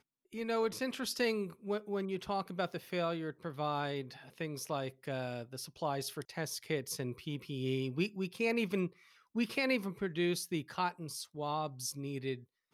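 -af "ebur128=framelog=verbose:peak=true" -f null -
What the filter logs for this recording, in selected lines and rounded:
Integrated loudness:
  I:         -37.0 LUFS
  Threshold: -47.1 LUFS
Loudness range:
  LRA:         4.3 LU
  Threshold: -57.1 LUFS
  LRA low:   -39.4 LUFS
  LRA high:  -35.1 LUFS
True peak:
  Peak:      -20.0 dBFS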